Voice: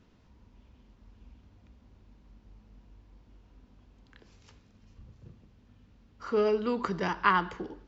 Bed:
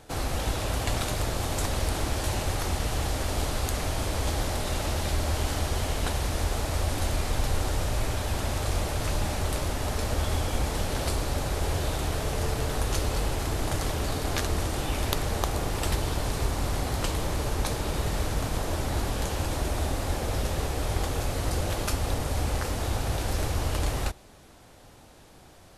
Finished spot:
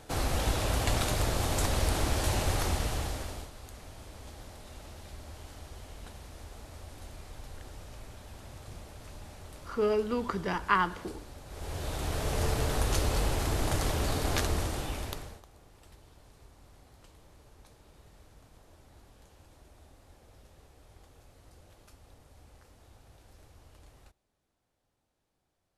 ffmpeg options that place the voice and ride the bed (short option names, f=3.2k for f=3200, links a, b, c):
-filter_complex "[0:a]adelay=3450,volume=-1.5dB[a];[1:a]volume=17.5dB,afade=t=out:st=2.61:d=0.89:silence=0.11885,afade=t=in:st=11.46:d=0.97:silence=0.125893,afade=t=out:st=14.38:d=1.04:silence=0.0421697[b];[a][b]amix=inputs=2:normalize=0"